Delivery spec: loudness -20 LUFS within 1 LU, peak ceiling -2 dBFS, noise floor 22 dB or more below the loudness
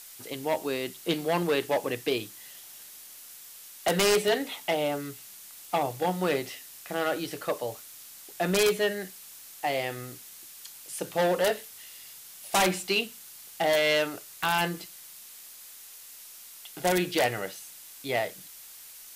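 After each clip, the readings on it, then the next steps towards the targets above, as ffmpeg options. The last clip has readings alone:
noise floor -48 dBFS; noise floor target -51 dBFS; loudness -28.5 LUFS; peak level -11.5 dBFS; loudness target -20.0 LUFS
-> -af "afftdn=nr=6:nf=-48"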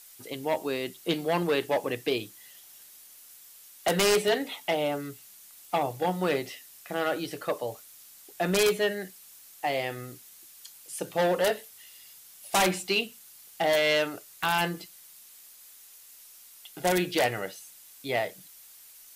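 noise floor -52 dBFS; loudness -28.5 LUFS; peak level -11.5 dBFS; loudness target -20.0 LUFS
-> -af "volume=2.66"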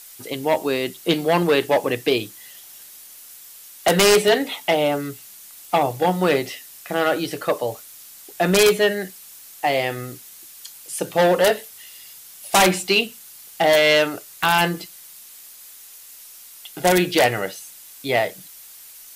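loudness -20.0 LUFS; peak level -3.0 dBFS; noise floor -43 dBFS

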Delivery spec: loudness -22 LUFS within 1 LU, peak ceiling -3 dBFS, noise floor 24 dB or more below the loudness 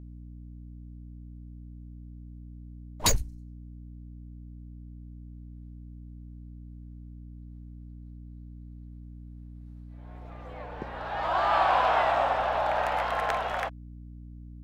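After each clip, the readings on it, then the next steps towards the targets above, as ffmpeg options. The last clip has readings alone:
hum 60 Hz; highest harmonic 300 Hz; hum level -41 dBFS; loudness -27.0 LUFS; peak level -12.0 dBFS; loudness target -22.0 LUFS
-> -af "bandreject=f=60:t=h:w=6,bandreject=f=120:t=h:w=6,bandreject=f=180:t=h:w=6,bandreject=f=240:t=h:w=6,bandreject=f=300:t=h:w=6"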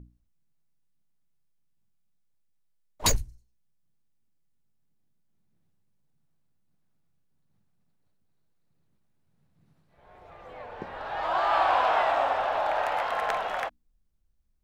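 hum not found; loudness -26.5 LUFS; peak level -12.0 dBFS; loudness target -22.0 LUFS
-> -af "volume=1.68"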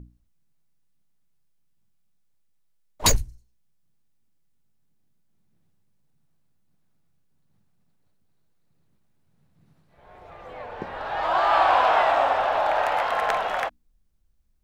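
loudness -22.5 LUFS; peak level -7.5 dBFS; noise floor -65 dBFS

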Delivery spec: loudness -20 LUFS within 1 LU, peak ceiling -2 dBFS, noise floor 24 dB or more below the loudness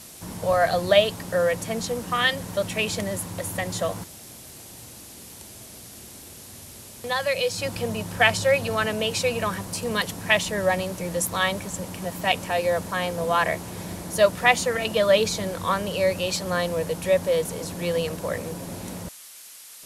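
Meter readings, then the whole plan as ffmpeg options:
noise floor -44 dBFS; noise floor target -49 dBFS; loudness -24.5 LUFS; peak level -3.5 dBFS; loudness target -20.0 LUFS
-> -af "afftdn=nr=6:nf=-44"
-af "volume=1.68,alimiter=limit=0.794:level=0:latency=1"

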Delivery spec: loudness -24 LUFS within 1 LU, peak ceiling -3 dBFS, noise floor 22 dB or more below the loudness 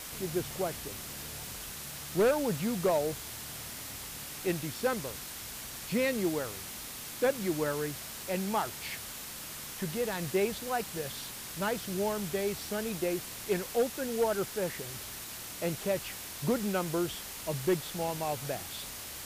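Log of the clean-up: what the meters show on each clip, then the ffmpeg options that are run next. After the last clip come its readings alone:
noise floor -43 dBFS; noise floor target -56 dBFS; loudness -33.5 LUFS; peak level -19.0 dBFS; loudness target -24.0 LUFS
-> -af "afftdn=nr=13:nf=-43"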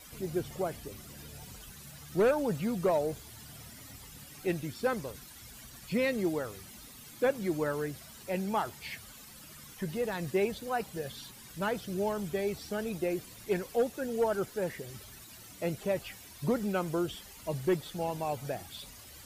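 noise floor -51 dBFS; noise floor target -56 dBFS
-> -af "afftdn=nr=6:nf=-51"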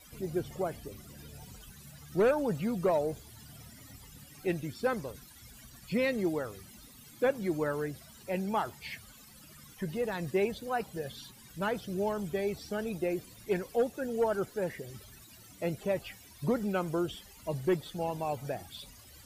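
noise floor -54 dBFS; noise floor target -56 dBFS
-> -af "afftdn=nr=6:nf=-54"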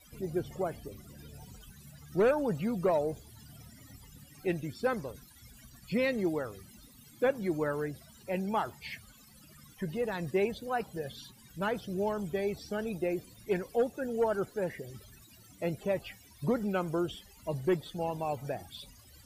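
noise floor -57 dBFS; loudness -33.5 LUFS; peak level -19.5 dBFS; loudness target -24.0 LUFS
-> -af "volume=2.99"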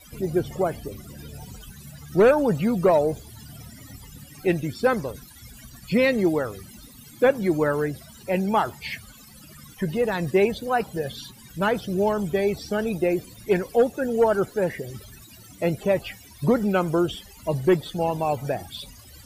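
loudness -24.0 LUFS; peak level -10.0 dBFS; noise floor -48 dBFS

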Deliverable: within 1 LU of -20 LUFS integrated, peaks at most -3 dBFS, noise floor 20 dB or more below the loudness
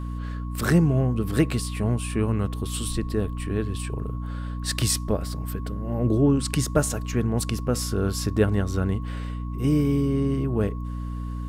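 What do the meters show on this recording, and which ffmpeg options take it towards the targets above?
hum 60 Hz; highest harmonic 300 Hz; hum level -28 dBFS; steady tone 1.1 kHz; tone level -44 dBFS; loudness -25.5 LUFS; peak level -6.5 dBFS; loudness target -20.0 LUFS
-> -af "bandreject=f=60:t=h:w=4,bandreject=f=120:t=h:w=4,bandreject=f=180:t=h:w=4,bandreject=f=240:t=h:w=4,bandreject=f=300:t=h:w=4"
-af "bandreject=f=1100:w=30"
-af "volume=1.88,alimiter=limit=0.708:level=0:latency=1"

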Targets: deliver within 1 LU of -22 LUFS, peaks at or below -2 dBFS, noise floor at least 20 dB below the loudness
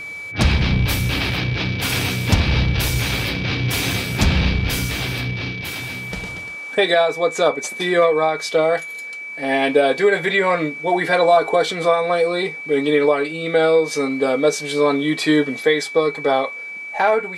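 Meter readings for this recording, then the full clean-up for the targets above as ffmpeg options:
steady tone 2.3 kHz; tone level -29 dBFS; loudness -19.0 LUFS; peak level -3.0 dBFS; loudness target -22.0 LUFS
-> -af "bandreject=f=2300:w=30"
-af "volume=0.708"

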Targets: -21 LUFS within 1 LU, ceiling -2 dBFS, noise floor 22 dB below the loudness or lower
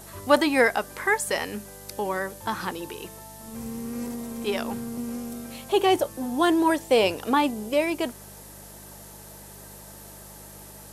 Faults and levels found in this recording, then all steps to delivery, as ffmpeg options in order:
hum 50 Hz; highest harmonic 200 Hz; hum level -48 dBFS; noise floor -45 dBFS; noise floor target -48 dBFS; loudness -25.5 LUFS; peak level -5.0 dBFS; loudness target -21.0 LUFS
-> -af "bandreject=f=50:t=h:w=4,bandreject=f=100:t=h:w=4,bandreject=f=150:t=h:w=4,bandreject=f=200:t=h:w=4"
-af "afftdn=nr=6:nf=-45"
-af "volume=1.68,alimiter=limit=0.794:level=0:latency=1"

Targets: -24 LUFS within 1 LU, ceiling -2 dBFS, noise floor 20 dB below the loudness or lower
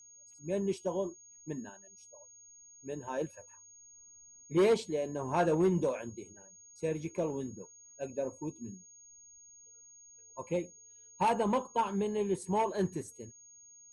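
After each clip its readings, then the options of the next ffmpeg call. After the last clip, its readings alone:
steady tone 6.6 kHz; tone level -54 dBFS; loudness -33.5 LUFS; peak level -17.5 dBFS; loudness target -24.0 LUFS
-> -af "bandreject=f=6600:w=30"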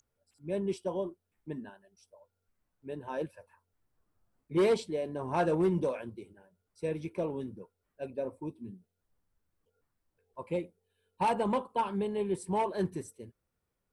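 steady tone not found; loudness -33.5 LUFS; peak level -17.5 dBFS; loudness target -24.0 LUFS
-> -af "volume=2.99"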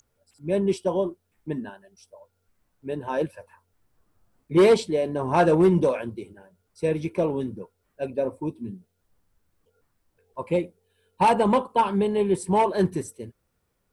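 loudness -24.0 LUFS; peak level -8.0 dBFS; noise floor -74 dBFS

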